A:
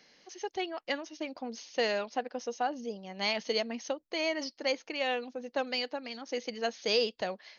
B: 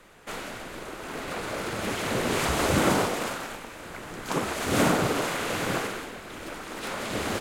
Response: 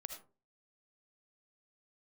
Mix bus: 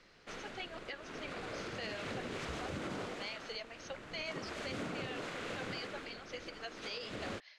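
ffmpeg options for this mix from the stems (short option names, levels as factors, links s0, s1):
-filter_complex "[0:a]highpass=700,flanger=delay=0.2:depth=8.4:regen=-37:speed=1.5:shape=triangular,volume=0.944[s0];[1:a]volume=0.335[s1];[s0][s1]amix=inputs=2:normalize=0,lowpass=5200,equalizer=f=880:t=o:w=0.7:g=-5,alimiter=level_in=2.37:limit=0.0631:level=0:latency=1:release=202,volume=0.422"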